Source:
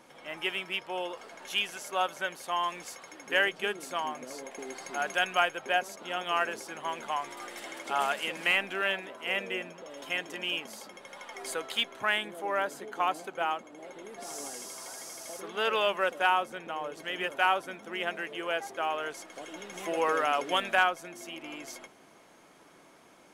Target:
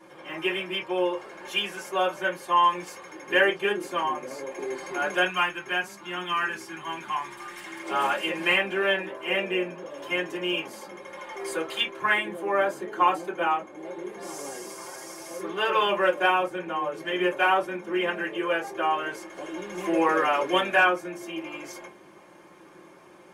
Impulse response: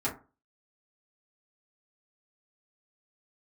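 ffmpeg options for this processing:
-filter_complex "[0:a]asettb=1/sr,asplit=3[s0][s1][s2];[s0]atrim=end=5.254[s3];[s1]atrim=start=5.25:end=7.83,asetpts=PTS-STARTPTS,afade=t=in:d=0.004:c=qsin,afade=t=out:st=2.576:d=0.004:c=qsin,equalizer=f=520:w=1.4:g=-15[s4];[s2]atrim=start=7.826[s5];[s3][s4]acrossfade=d=0.004:c1=hsin:c2=qsin[s6];[s6][s5]acrossfade=d=0.004:c1=qsin:c2=hsin[s7];[1:a]atrim=start_sample=2205,atrim=end_sample=3969,asetrate=57330,aresample=44100[s8];[s7][s8]afir=irnorm=-1:irlink=0"

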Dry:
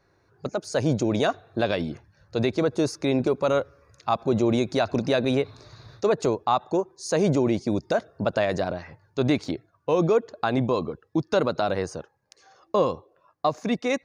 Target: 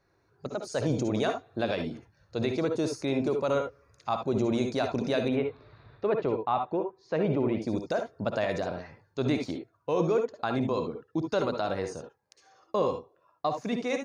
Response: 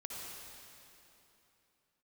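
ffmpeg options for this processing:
-filter_complex "[0:a]asettb=1/sr,asplit=3[s0][s1][s2];[s0]atrim=end=5.284[s3];[s1]atrim=start=5.28:end=7.62,asetpts=PTS-STARTPTS,afade=t=in:d=0.004:c=qsin,afade=t=out:st=2.336:d=0.004:c=qsin,lowpass=f=3100:w=0.5412,lowpass=f=3100:w=1.3066[s4];[s2]atrim=start=7.616[s5];[s3][s4]acrossfade=d=0.004:c1=hsin:c2=qsin[s6];[s6][s5]acrossfade=d=0.004:c1=qsin:c2=hsin[s7];[1:a]atrim=start_sample=2205,atrim=end_sample=3528[s8];[s7][s8]afir=irnorm=-1:irlink=0"

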